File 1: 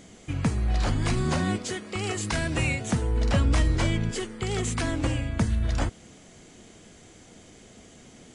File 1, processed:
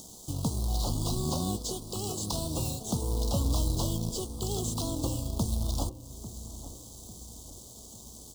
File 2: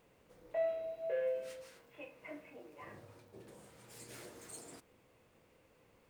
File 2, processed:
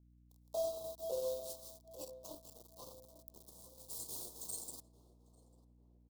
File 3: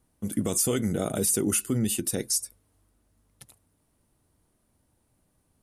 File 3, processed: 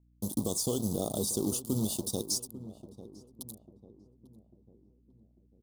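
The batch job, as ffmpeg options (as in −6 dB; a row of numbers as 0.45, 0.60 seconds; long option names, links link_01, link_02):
-filter_complex "[0:a]aemphasis=mode=production:type=75fm,acrossover=split=4900[link_01][link_02];[link_02]acompressor=threshold=-37dB:ratio=4:attack=1:release=60[link_03];[link_01][link_03]amix=inputs=2:normalize=0,equalizer=frequency=2500:width=2.5:gain=11,acompressor=threshold=-48dB:ratio=1.5,acrusher=bits=3:mode=log:mix=0:aa=0.000001,aeval=exprs='sgn(val(0))*max(abs(val(0))-0.00355,0)':channel_layout=same,aeval=exprs='val(0)+0.000316*(sin(2*PI*60*n/s)+sin(2*PI*2*60*n/s)/2+sin(2*PI*3*60*n/s)/3+sin(2*PI*4*60*n/s)/4+sin(2*PI*5*60*n/s)/5)':channel_layout=same,asuperstop=centerf=2000:order=8:qfactor=0.75,asplit=2[link_04][link_05];[link_05]adelay=846,lowpass=frequency=910:poles=1,volume=-13.5dB,asplit=2[link_06][link_07];[link_07]adelay=846,lowpass=frequency=910:poles=1,volume=0.49,asplit=2[link_08][link_09];[link_09]adelay=846,lowpass=frequency=910:poles=1,volume=0.49,asplit=2[link_10][link_11];[link_11]adelay=846,lowpass=frequency=910:poles=1,volume=0.49,asplit=2[link_12][link_13];[link_13]adelay=846,lowpass=frequency=910:poles=1,volume=0.49[link_14];[link_04][link_06][link_08][link_10][link_12][link_14]amix=inputs=6:normalize=0,volume=6dB"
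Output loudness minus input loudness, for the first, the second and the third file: −5.0, −1.5, −6.0 LU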